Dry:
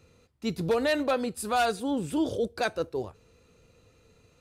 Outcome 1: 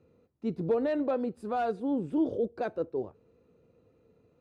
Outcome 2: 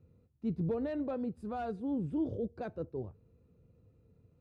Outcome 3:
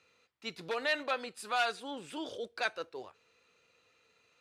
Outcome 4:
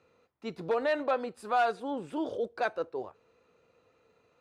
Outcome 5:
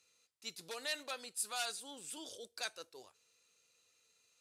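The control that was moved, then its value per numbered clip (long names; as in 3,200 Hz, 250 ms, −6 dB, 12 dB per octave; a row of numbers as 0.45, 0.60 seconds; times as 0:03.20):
resonant band-pass, frequency: 320, 120, 2,300, 930, 7,800 Hertz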